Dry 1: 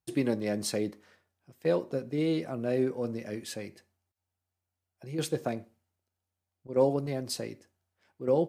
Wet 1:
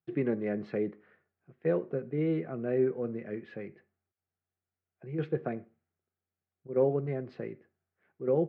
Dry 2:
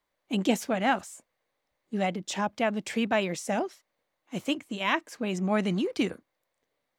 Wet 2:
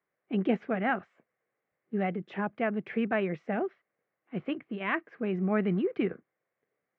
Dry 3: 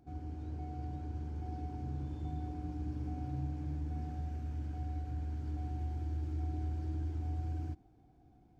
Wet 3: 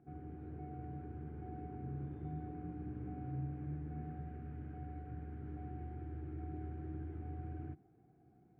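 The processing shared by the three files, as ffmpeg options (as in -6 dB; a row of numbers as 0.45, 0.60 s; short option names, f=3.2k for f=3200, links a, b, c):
-af "highpass=130,equalizer=f=150:t=q:w=4:g=4,equalizer=f=280:t=q:w=4:g=-5,equalizer=f=400:t=q:w=4:g=4,equalizer=f=580:t=q:w=4:g=-5,equalizer=f=930:t=q:w=4:g=-10,lowpass=f=2.1k:w=0.5412,lowpass=f=2.1k:w=1.3066"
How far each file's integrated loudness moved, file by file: -1.0, -2.5, -6.0 LU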